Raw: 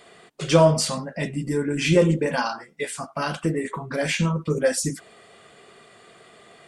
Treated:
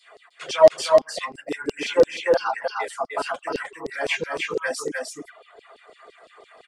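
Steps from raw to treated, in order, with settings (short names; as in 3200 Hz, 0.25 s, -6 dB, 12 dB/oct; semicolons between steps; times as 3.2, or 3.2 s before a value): high shelf 2700 Hz -12 dB; notch comb 190 Hz; LFO high-pass saw down 5.9 Hz 390–5100 Hz; in parallel at -6 dB: soft clip -19 dBFS, distortion -4 dB; on the sum: reverb removal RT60 1.2 s; on a send: echo 0.305 s -3.5 dB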